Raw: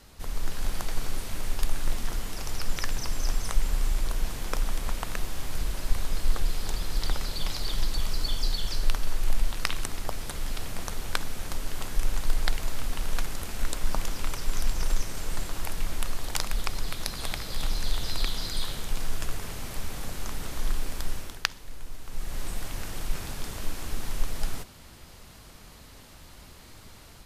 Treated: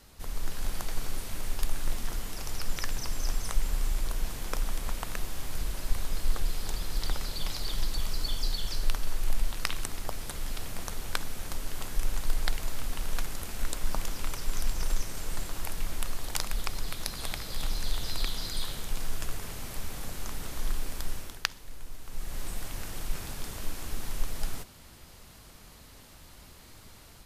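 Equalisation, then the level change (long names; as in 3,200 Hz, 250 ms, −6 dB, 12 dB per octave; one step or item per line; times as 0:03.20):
high-shelf EQ 9,400 Hz +4.5 dB
−3.0 dB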